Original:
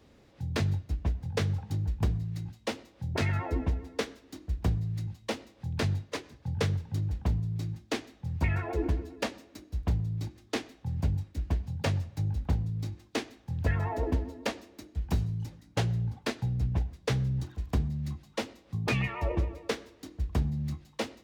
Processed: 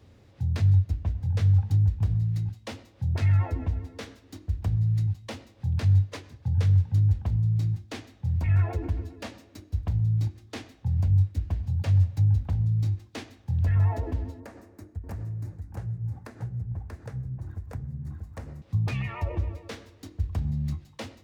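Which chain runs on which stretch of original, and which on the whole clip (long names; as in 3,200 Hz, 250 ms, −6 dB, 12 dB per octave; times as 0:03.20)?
0:14.40–0:18.62: drawn EQ curve 1,700 Hz 0 dB, 3,200 Hz −16 dB, 8,500 Hz −3 dB + downward compressor 8 to 1, threshold −39 dBFS + single-tap delay 636 ms −3.5 dB
whole clip: dynamic equaliser 400 Hz, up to −5 dB, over −50 dBFS, Q 3.3; brickwall limiter −26.5 dBFS; parametric band 95 Hz +15 dB 0.59 octaves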